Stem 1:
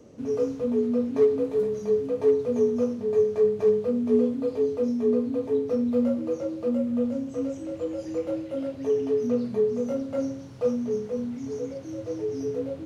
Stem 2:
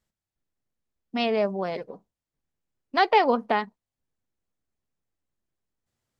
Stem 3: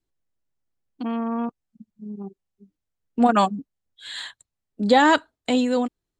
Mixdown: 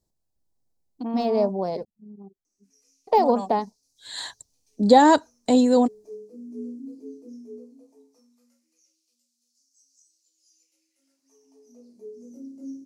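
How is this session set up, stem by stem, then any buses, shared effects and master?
-18.5 dB, 2.45 s, no send, FFT filter 130 Hz 0 dB, 200 Hz +7 dB, 300 Hz +9 dB, 510 Hz -14 dB, 1.1 kHz -10 dB, 2.5 kHz +3 dB, 3.8 kHz -4 dB, 5.7 kHz +10 dB; LFO high-pass sine 0.17 Hz 320–4700 Hz
+2.5 dB, 0.00 s, muted 1.85–3.07 s, no send, de-esser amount 80%
+0.5 dB, 0.00 s, no send, peaking EQ 1.7 kHz +6.5 dB 0.79 oct; level rider gain up to 9 dB; auto duck -19 dB, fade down 1.70 s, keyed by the second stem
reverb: none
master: high-order bell 2 kHz -15 dB

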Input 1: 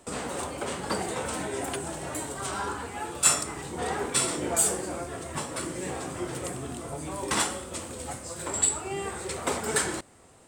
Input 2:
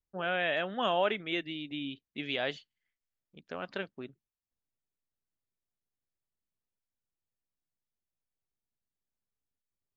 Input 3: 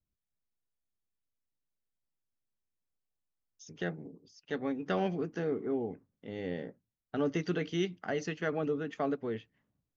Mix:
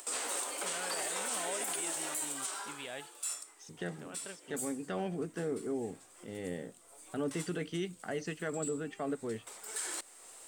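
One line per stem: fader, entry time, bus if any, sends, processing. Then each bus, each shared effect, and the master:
-4.5 dB, 0.00 s, no send, high-pass 280 Hz 24 dB/octave; tilt EQ +3.5 dB/octave; auto duck -22 dB, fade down 1.50 s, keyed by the third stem
-11.0 dB, 0.50 s, no send, upward compressor, threshold -44 dBFS
-2.5 dB, 0.00 s, no send, none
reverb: none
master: upward compressor, threshold -46 dBFS; peak limiter -26 dBFS, peak gain reduction 9 dB

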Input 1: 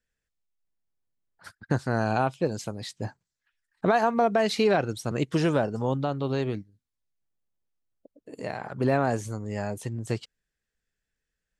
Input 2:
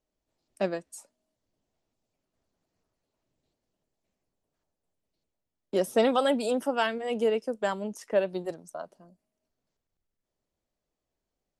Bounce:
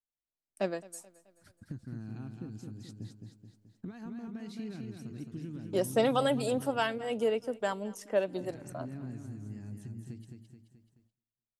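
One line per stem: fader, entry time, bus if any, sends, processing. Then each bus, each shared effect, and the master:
-3.0 dB, 0.00 s, no send, echo send -5 dB, FFT filter 300 Hz 0 dB, 580 Hz -25 dB, 2.1 kHz -13 dB; compression 3:1, threshold -40 dBFS, peak gain reduction 13.5 dB
-3.5 dB, 0.00 s, no send, echo send -21.5 dB, none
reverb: none
echo: feedback delay 215 ms, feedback 50%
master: gate with hold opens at -58 dBFS; treble shelf 9.9 kHz +7 dB

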